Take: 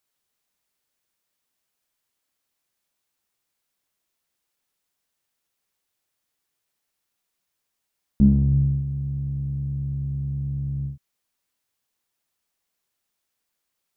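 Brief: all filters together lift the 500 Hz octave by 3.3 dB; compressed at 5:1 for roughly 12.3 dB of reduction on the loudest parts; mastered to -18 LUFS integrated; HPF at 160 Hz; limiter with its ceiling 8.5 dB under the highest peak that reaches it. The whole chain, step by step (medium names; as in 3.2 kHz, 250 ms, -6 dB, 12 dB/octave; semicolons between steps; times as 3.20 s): high-pass 160 Hz; peaking EQ 500 Hz +5 dB; compression 5:1, threshold -27 dBFS; trim +16 dB; peak limiter -10.5 dBFS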